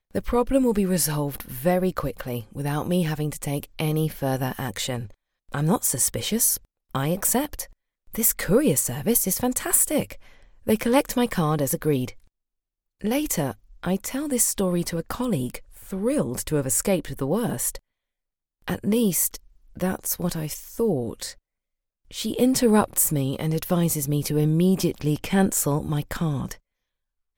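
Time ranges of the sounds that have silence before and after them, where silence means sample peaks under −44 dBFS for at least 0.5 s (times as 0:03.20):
0:13.01–0:17.78
0:18.68–0:21.33
0:22.11–0:26.58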